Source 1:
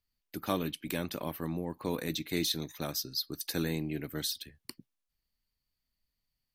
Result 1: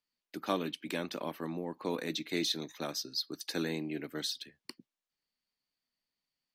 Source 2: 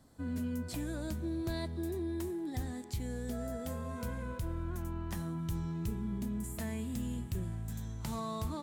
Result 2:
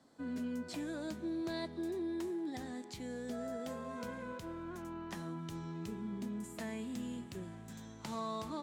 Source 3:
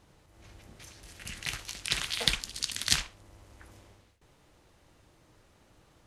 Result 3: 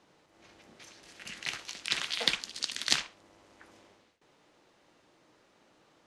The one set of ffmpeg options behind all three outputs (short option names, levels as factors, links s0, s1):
-filter_complex "[0:a]aeval=exprs='0.794*(cos(1*acos(clip(val(0)/0.794,-1,1)))-cos(1*PI/2))+0.178*(cos(2*acos(clip(val(0)/0.794,-1,1)))-cos(2*PI/2))':c=same,acrossover=split=180 7400:gain=0.0794 1 0.2[s0][s1][s2];[s0][s1][s2]amix=inputs=3:normalize=0"